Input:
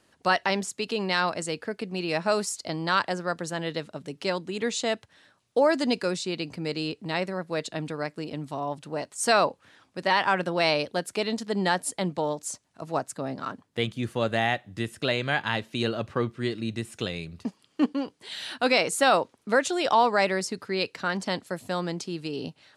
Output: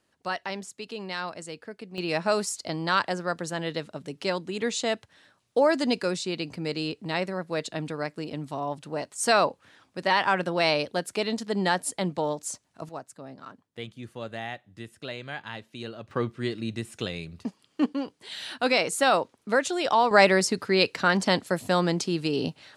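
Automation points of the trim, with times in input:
-8 dB
from 1.98 s 0 dB
from 12.89 s -10.5 dB
from 16.11 s -1 dB
from 20.11 s +6 dB

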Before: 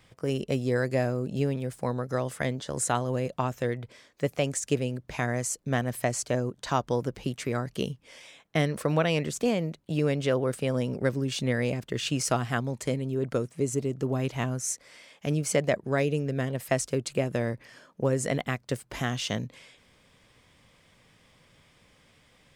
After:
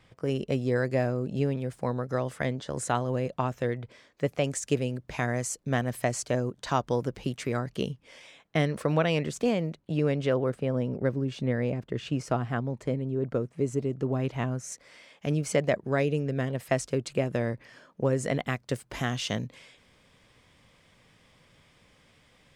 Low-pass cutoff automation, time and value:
low-pass 6 dB/octave
3.9 kHz
from 4.44 s 8.1 kHz
from 7.59 s 4.8 kHz
from 9.77 s 2.7 kHz
from 10.50 s 1.1 kHz
from 13.53 s 2.2 kHz
from 14.72 s 4.6 kHz
from 18.44 s 9.6 kHz

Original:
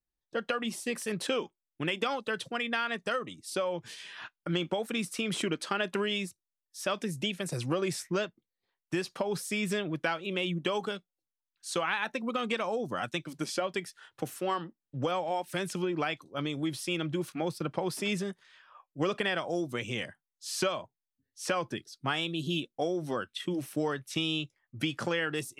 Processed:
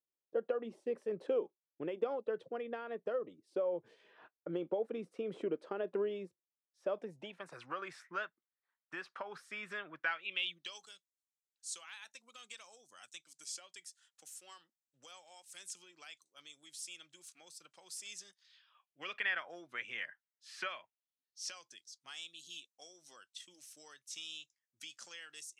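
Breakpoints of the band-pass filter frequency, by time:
band-pass filter, Q 2.4
6.86 s 470 Hz
7.61 s 1.4 kHz
9.98 s 1.4 kHz
10.90 s 7.3 kHz
18.07 s 7.3 kHz
19.36 s 1.8 kHz
20.64 s 1.8 kHz
21.59 s 6.6 kHz

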